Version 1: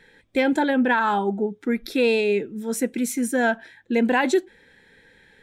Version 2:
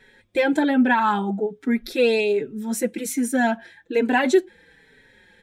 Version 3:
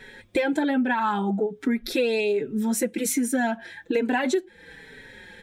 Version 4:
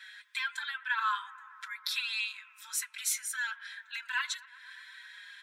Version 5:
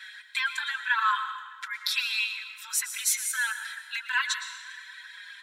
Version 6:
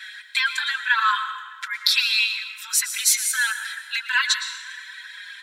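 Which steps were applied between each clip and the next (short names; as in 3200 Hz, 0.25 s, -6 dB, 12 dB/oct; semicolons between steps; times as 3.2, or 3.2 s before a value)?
endless flanger 4.8 ms -1.2 Hz; gain +3.5 dB
compressor 5:1, threshold -31 dBFS, peak gain reduction 17 dB; gain +8.5 dB
rippled Chebyshev high-pass 1000 Hz, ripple 6 dB; analogue delay 0.122 s, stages 2048, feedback 82%, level -20.5 dB; gain +1 dB
reverb removal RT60 0.67 s; on a send at -8 dB: reverb RT60 1.2 s, pre-delay 0.104 s; on the sum: gain +6 dB
HPF 1100 Hz 12 dB/oct; dynamic EQ 4500 Hz, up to +6 dB, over -46 dBFS, Q 2.9; gain +6.5 dB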